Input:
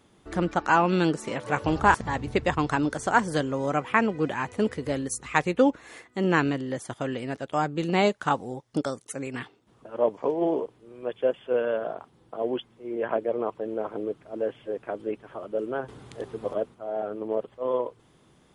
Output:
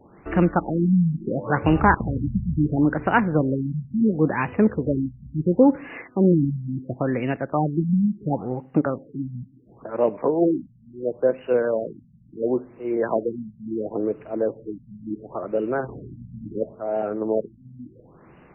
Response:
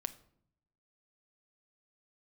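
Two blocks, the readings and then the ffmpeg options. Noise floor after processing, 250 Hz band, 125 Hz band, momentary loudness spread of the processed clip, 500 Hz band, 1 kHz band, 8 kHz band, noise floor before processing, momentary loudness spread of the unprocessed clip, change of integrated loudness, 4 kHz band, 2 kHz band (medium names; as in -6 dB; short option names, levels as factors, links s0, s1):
-52 dBFS, +7.0 dB, +9.0 dB, 15 LU, +3.0 dB, -1.0 dB, under -40 dB, -61 dBFS, 12 LU, +4.0 dB, under -10 dB, -1.5 dB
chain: -filter_complex "[0:a]acrossover=split=310|3000[s0][s1][s2];[s1]acompressor=threshold=0.00562:ratio=1.5[s3];[s0][s3][s2]amix=inputs=3:normalize=0,asplit=2[s4][s5];[1:a]atrim=start_sample=2205,lowshelf=f=250:g=-8[s6];[s5][s6]afir=irnorm=-1:irlink=0,volume=0.944[s7];[s4][s7]amix=inputs=2:normalize=0,afftfilt=real='re*lt(b*sr/1024,230*pow(3000/230,0.5+0.5*sin(2*PI*0.72*pts/sr)))':imag='im*lt(b*sr/1024,230*pow(3000/230,0.5+0.5*sin(2*PI*0.72*pts/sr)))':win_size=1024:overlap=0.75,volume=2"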